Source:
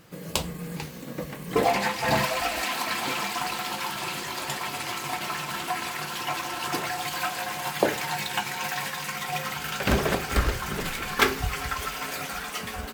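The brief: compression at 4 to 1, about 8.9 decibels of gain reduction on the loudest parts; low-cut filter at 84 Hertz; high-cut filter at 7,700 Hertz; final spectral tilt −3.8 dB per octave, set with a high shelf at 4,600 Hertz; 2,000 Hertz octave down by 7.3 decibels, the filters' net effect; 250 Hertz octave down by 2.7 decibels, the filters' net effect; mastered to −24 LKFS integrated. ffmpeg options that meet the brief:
ffmpeg -i in.wav -af "highpass=84,lowpass=7700,equalizer=frequency=250:width_type=o:gain=-3.5,equalizer=frequency=2000:width_type=o:gain=-8,highshelf=frequency=4600:gain=-7.5,acompressor=threshold=-31dB:ratio=4,volume=12dB" out.wav

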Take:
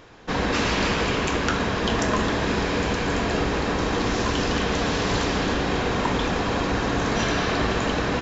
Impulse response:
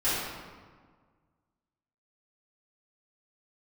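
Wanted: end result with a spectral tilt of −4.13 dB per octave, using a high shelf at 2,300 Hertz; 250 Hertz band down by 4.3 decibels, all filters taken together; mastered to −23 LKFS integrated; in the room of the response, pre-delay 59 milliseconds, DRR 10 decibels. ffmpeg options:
-filter_complex "[0:a]equalizer=frequency=250:width_type=o:gain=-5.5,highshelf=frequency=2300:gain=-7.5,asplit=2[link_01][link_02];[1:a]atrim=start_sample=2205,adelay=59[link_03];[link_02][link_03]afir=irnorm=-1:irlink=0,volume=-22dB[link_04];[link_01][link_04]amix=inputs=2:normalize=0,volume=3dB"

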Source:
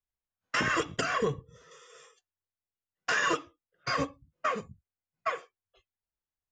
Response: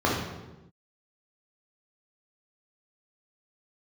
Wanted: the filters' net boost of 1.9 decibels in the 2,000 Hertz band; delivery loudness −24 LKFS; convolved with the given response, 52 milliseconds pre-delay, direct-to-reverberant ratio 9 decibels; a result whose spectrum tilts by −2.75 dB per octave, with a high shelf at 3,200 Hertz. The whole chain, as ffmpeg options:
-filter_complex "[0:a]equalizer=frequency=2000:width_type=o:gain=5,highshelf=frequency=3200:gain=-8.5,asplit=2[link_01][link_02];[1:a]atrim=start_sample=2205,adelay=52[link_03];[link_02][link_03]afir=irnorm=-1:irlink=0,volume=-25dB[link_04];[link_01][link_04]amix=inputs=2:normalize=0,volume=6.5dB"

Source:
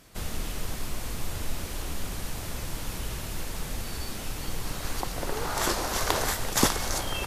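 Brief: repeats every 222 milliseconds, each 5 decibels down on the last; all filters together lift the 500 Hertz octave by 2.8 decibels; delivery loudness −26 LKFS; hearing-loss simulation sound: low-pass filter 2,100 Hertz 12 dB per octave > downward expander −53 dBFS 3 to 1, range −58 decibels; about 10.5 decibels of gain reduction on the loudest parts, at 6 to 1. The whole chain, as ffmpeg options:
ffmpeg -i in.wav -af "equalizer=frequency=500:width_type=o:gain=3.5,acompressor=threshold=-28dB:ratio=6,lowpass=2100,aecho=1:1:222|444|666|888|1110|1332|1554:0.562|0.315|0.176|0.0988|0.0553|0.031|0.0173,agate=range=-58dB:threshold=-53dB:ratio=3,volume=10dB" out.wav

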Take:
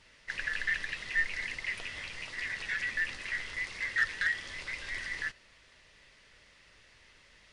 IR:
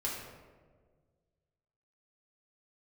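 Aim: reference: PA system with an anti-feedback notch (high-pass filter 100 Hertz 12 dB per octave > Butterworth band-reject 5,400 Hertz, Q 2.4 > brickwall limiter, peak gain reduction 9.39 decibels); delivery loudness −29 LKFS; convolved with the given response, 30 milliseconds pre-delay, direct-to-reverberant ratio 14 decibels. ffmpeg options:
-filter_complex "[0:a]asplit=2[link_01][link_02];[1:a]atrim=start_sample=2205,adelay=30[link_03];[link_02][link_03]afir=irnorm=-1:irlink=0,volume=-17.5dB[link_04];[link_01][link_04]amix=inputs=2:normalize=0,highpass=100,asuperstop=centerf=5400:order=8:qfactor=2.4,volume=7.5dB,alimiter=limit=-19.5dB:level=0:latency=1"

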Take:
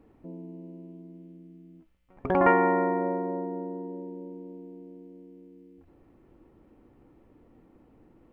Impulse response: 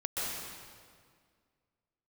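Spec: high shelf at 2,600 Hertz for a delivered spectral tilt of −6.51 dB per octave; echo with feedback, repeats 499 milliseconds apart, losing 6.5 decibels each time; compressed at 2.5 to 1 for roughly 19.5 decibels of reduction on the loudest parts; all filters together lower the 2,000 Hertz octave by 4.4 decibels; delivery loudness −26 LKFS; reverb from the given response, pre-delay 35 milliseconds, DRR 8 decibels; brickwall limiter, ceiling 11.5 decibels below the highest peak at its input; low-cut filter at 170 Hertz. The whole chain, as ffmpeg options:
-filter_complex "[0:a]highpass=170,equalizer=frequency=2000:width_type=o:gain=-7,highshelf=frequency=2600:gain=4,acompressor=threshold=-47dB:ratio=2.5,alimiter=level_in=14.5dB:limit=-24dB:level=0:latency=1,volume=-14.5dB,aecho=1:1:499|998|1497|1996|2495|2994:0.473|0.222|0.105|0.0491|0.0231|0.0109,asplit=2[link_01][link_02];[1:a]atrim=start_sample=2205,adelay=35[link_03];[link_02][link_03]afir=irnorm=-1:irlink=0,volume=-14dB[link_04];[link_01][link_04]amix=inputs=2:normalize=0,volume=23dB"

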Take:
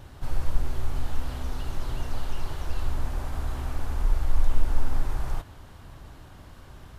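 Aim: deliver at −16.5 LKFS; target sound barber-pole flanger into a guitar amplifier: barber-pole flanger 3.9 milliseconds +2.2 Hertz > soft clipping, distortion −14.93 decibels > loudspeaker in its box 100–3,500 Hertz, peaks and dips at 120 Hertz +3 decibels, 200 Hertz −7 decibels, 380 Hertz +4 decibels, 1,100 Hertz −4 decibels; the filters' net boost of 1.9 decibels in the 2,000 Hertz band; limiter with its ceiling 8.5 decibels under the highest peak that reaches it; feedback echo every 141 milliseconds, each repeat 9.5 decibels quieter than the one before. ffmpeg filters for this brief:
ffmpeg -i in.wav -filter_complex "[0:a]equalizer=frequency=2000:width_type=o:gain=3,alimiter=limit=-16dB:level=0:latency=1,aecho=1:1:141|282|423|564:0.335|0.111|0.0365|0.012,asplit=2[link_01][link_02];[link_02]adelay=3.9,afreqshift=2.2[link_03];[link_01][link_03]amix=inputs=2:normalize=1,asoftclip=threshold=-19.5dB,highpass=100,equalizer=frequency=120:width_type=q:width=4:gain=3,equalizer=frequency=200:width_type=q:width=4:gain=-7,equalizer=frequency=380:width_type=q:width=4:gain=4,equalizer=frequency=1100:width_type=q:width=4:gain=-4,lowpass=frequency=3500:width=0.5412,lowpass=frequency=3500:width=1.3066,volume=28dB" out.wav

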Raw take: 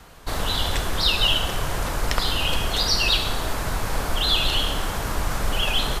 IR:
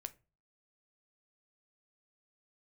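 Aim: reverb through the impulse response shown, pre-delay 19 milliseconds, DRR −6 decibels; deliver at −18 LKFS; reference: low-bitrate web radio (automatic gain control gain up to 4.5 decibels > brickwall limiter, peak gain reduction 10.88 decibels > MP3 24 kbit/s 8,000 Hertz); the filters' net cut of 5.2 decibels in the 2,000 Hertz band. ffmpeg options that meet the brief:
-filter_complex "[0:a]equalizer=frequency=2000:width_type=o:gain=-8,asplit=2[link_01][link_02];[1:a]atrim=start_sample=2205,adelay=19[link_03];[link_02][link_03]afir=irnorm=-1:irlink=0,volume=10dB[link_04];[link_01][link_04]amix=inputs=2:normalize=0,dynaudnorm=maxgain=4.5dB,alimiter=limit=-12.5dB:level=0:latency=1,volume=7.5dB" -ar 8000 -c:a libmp3lame -b:a 24k

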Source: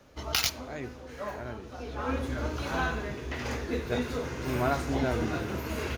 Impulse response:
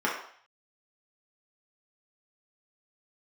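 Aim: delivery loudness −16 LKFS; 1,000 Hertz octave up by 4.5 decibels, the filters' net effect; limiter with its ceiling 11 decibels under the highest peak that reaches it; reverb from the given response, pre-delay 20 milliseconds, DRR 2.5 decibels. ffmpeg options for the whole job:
-filter_complex "[0:a]equalizer=frequency=1000:width_type=o:gain=6,alimiter=limit=-20.5dB:level=0:latency=1,asplit=2[link_01][link_02];[1:a]atrim=start_sample=2205,adelay=20[link_03];[link_02][link_03]afir=irnorm=-1:irlink=0,volume=-15dB[link_04];[link_01][link_04]amix=inputs=2:normalize=0,volume=15dB"

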